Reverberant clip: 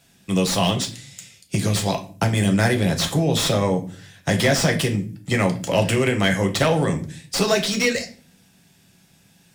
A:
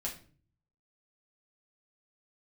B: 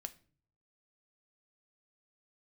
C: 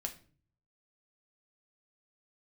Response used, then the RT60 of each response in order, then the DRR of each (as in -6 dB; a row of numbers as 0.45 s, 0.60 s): C; 0.40 s, 0.45 s, 0.40 s; -4.0 dB, 9.0 dB, 3.0 dB